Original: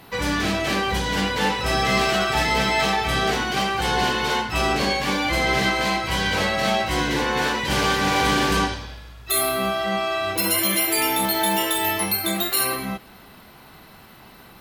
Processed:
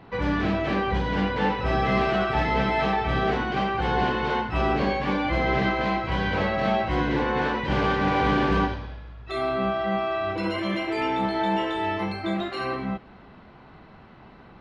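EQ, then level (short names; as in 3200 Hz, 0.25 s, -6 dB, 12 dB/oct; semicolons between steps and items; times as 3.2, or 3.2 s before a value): air absorption 62 m; tape spacing loss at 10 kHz 31 dB; +1.0 dB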